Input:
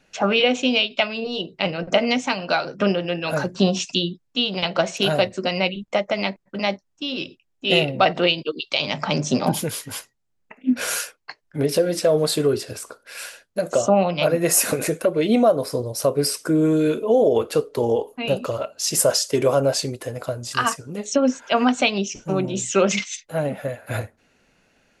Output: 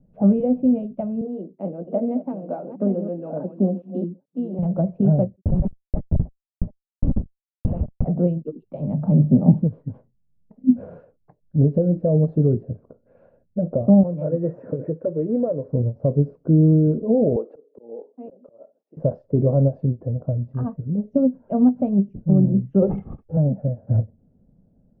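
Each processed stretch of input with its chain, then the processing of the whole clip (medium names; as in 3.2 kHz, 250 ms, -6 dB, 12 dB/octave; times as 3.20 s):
1.21–4.59 s: chunks repeated in reverse 435 ms, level -9.5 dB + high-pass 260 Hz 24 dB/octave
5.41–8.08 s: LFO high-pass saw up 9.5 Hz 490–5300 Hz + Schmitt trigger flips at -23 dBFS
14.03–15.69 s: comb 2.2 ms, depth 36% + short-mantissa float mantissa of 2-bit + cabinet simulation 200–6800 Hz, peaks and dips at 210 Hz -10 dB, 390 Hz -3 dB, 790 Hz -9 dB, 1.7 kHz +8 dB, 2.9 kHz -5 dB, 4.4 kHz -7 dB
17.36–18.97 s: high-pass 320 Hz 24 dB/octave + slow attack 571 ms
22.82–23.37 s: comb 2.3 ms, depth 95% + careless resampling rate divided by 6×, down none, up filtered
whole clip: Chebyshev low-pass 580 Hz, order 3; resonant low shelf 270 Hz +10.5 dB, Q 1.5; endings held to a fixed fall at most 360 dB/s; trim -1 dB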